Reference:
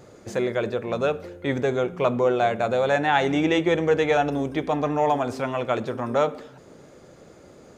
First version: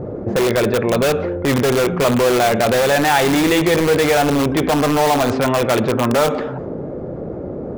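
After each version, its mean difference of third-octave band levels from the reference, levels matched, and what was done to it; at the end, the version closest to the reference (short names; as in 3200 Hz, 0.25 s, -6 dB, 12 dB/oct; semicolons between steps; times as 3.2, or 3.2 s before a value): 8.5 dB: low-pass opened by the level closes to 530 Hz, open at -17 dBFS; in parallel at -4.5 dB: wrapped overs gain 20.5 dB; on the sum: fast leveller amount 50%; gain +3.5 dB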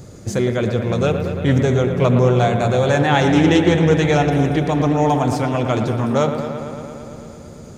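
5.0 dB: tone controls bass +14 dB, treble +11 dB; on a send: dark delay 0.113 s, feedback 79%, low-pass 3300 Hz, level -8.5 dB; on the sum: Doppler distortion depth 0.14 ms; gain +2 dB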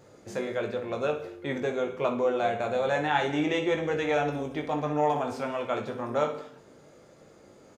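2.0 dB: low shelf 140 Hz -4 dB; early reflections 20 ms -6.5 dB, 60 ms -11 dB; non-linear reverb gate 0.29 s falling, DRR 8.5 dB; gain -6.5 dB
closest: third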